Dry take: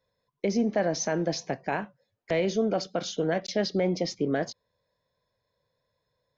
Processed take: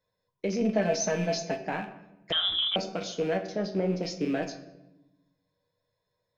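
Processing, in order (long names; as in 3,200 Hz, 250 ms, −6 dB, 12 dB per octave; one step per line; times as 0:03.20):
loose part that buzzes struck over −41 dBFS, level −31 dBFS
0:00.61–0:01.59: comb filter 4.6 ms, depth 83%
0:03.37–0:04.03: high shelf with overshoot 1,800 Hz −7.5 dB, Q 1.5
tuned comb filter 96 Hz, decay 0.16 s, harmonics all, mix 80%
rectangular room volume 380 cubic metres, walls mixed, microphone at 0.5 metres
0:02.32–0:02.76: voice inversion scrambler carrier 3,700 Hz
level +2 dB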